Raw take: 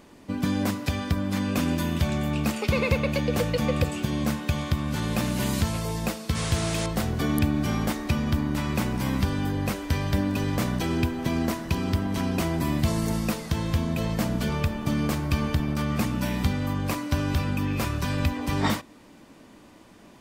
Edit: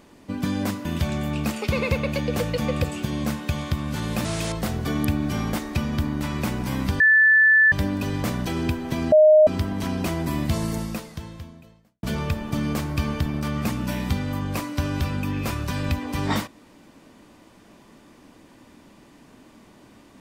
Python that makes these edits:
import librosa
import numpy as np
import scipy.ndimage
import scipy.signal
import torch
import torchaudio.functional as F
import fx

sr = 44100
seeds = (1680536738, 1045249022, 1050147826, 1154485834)

y = fx.edit(x, sr, fx.cut(start_s=0.85, length_s=1.0),
    fx.cut(start_s=5.25, length_s=1.34),
    fx.bleep(start_s=9.34, length_s=0.72, hz=1750.0, db=-12.0),
    fx.bleep(start_s=11.46, length_s=0.35, hz=617.0, db=-9.5),
    fx.fade_out_span(start_s=13.0, length_s=1.37, curve='qua'), tone=tone)